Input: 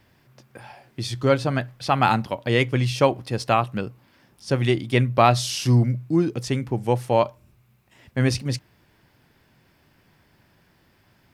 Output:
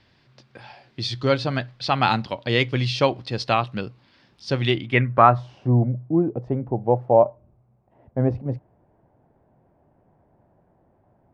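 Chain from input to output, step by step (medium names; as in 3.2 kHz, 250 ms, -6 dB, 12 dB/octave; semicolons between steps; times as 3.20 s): low-pass sweep 4.3 kHz -> 700 Hz, 4.59–5.61 s; trim -1.5 dB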